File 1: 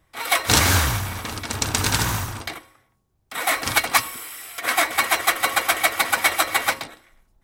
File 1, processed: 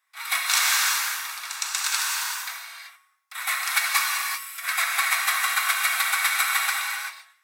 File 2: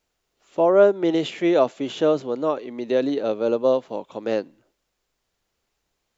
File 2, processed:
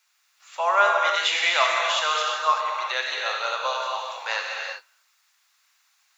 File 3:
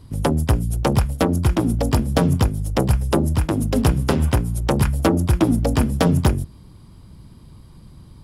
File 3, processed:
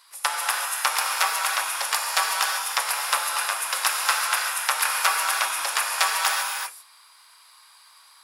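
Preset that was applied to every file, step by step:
inverse Chebyshev high-pass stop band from 240 Hz, stop band 70 dB; notch 3100 Hz, Q 14; non-linear reverb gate 0.41 s flat, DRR -1.5 dB; match loudness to -23 LUFS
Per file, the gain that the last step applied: -4.5, +9.5, +5.5 dB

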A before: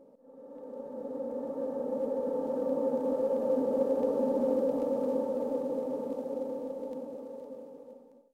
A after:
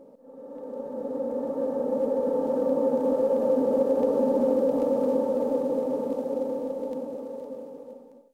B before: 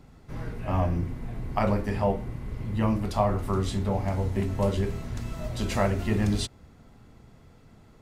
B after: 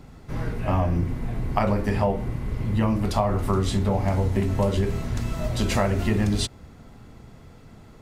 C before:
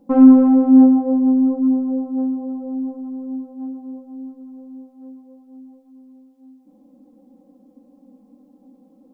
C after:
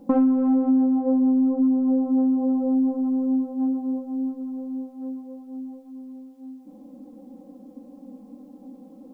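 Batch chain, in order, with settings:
compressor 10:1, threshold -24 dBFS; gain +6.5 dB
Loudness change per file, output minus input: +6.0, +3.5, -7.5 LU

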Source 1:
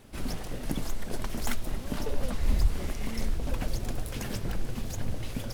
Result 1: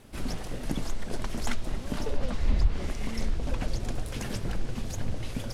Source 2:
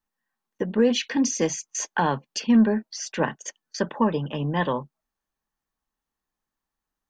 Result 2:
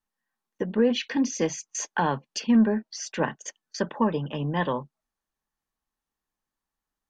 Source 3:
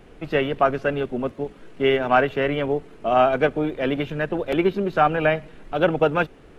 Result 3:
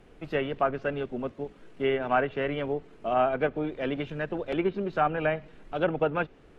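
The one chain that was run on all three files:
treble ducked by the level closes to 2700 Hz, closed at -15 dBFS; normalise peaks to -12 dBFS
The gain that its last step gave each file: +0.5, -2.0, -7.0 dB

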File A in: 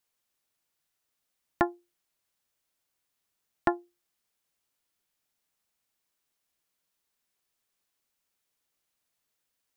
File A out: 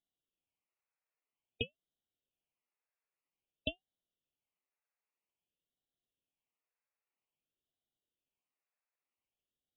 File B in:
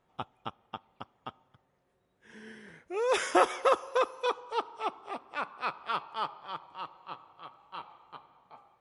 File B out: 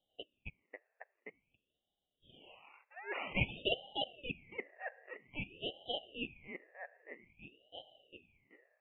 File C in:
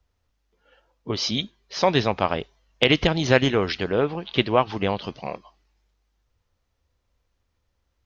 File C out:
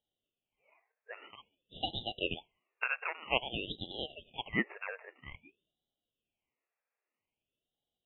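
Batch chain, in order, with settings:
rattling part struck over -25 dBFS, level -23 dBFS; brick-wall FIR band-pass 990–2200 Hz; ring modulator with a swept carrier 1200 Hz, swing 55%, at 0.51 Hz; gain -2.5 dB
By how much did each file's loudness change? -10.5, -10.0, -14.0 LU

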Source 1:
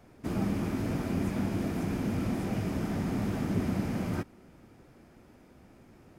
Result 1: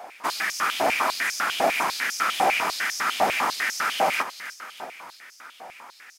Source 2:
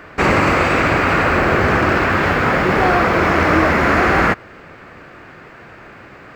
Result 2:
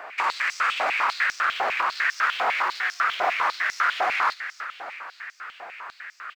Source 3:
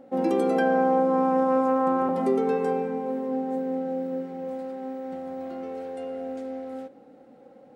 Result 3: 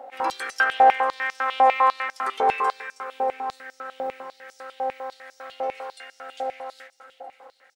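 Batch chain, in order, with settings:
limiter -12.5 dBFS; soft clip -18.5 dBFS; on a send: feedback echo 0.318 s, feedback 59%, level -12 dB; on the sum: stepped high-pass 10 Hz 750–5600 Hz; match loudness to -24 LUFS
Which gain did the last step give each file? +15.5, -3.0, +6.5 dB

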